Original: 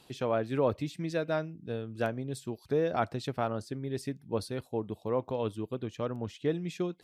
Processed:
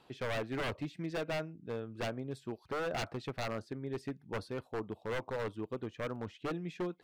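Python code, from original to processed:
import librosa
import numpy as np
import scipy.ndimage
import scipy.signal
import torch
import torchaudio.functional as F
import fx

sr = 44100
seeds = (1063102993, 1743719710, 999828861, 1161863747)

y = fx.curve_eq(x, sr, hz=(120.0, 1300.0, 9800.0), db=(0, 7, -10))
y = 10.0 ** (-24.0 / 20.0) * (np.abs((y / 10.0 ** (-24.0 / 20.0) + 3.0) % 4.0 - 2.0) - 1.0)
y = F.gain(torch.from_numpy(y), -6.0).numpy()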